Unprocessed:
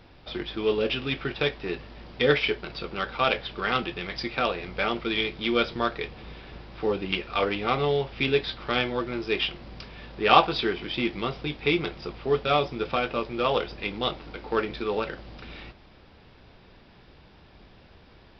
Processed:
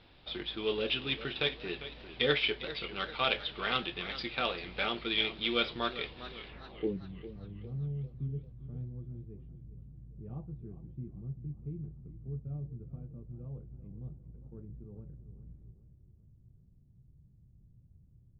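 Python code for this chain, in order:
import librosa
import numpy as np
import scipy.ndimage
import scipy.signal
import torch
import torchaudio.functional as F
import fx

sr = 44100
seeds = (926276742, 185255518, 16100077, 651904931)

y = fx.filter_sweep_lowpass(x, sr, from_hz=3700.0, to_hz=130.0, start_s=6.47, end_s=7.02, q=2.5)
y = fx.echo_warbled(y, sr, ms=399, feedback_pct=47, rate_hz=2.8, cents=110, wet_db=-13.5)
y = y * librosa.db_to_amplitude(-8.5)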